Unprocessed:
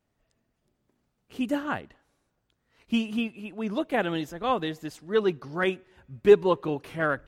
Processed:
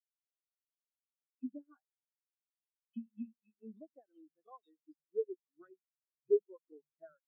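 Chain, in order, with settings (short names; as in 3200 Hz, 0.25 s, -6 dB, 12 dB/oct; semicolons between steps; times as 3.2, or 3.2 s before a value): tilt +3 dB/oct; compressor 16:1, threshold -33 dBFS, peak gain reduction 19.5 dB; bell 83 Hz +4.5 dB 2.7 oct; three bands offset in time highs, mids, lows 40/140 ms, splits 160/2300 Hz; spectral expander 4:1; gain +3 dB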